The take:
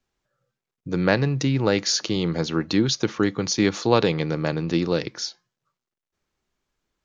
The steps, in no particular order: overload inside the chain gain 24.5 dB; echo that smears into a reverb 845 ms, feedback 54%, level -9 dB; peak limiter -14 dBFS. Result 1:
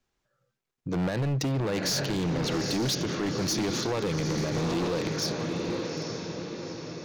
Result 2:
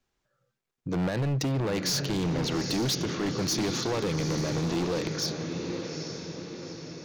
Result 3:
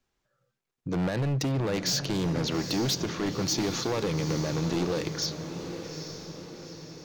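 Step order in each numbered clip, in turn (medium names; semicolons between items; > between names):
echo that smears into a reverb > peak limiter > overload inside the chain; peak limiter > echo that smears into a reverb > overload inside the chain; peak limiter > overload inside the chain > echo that smears into a reverb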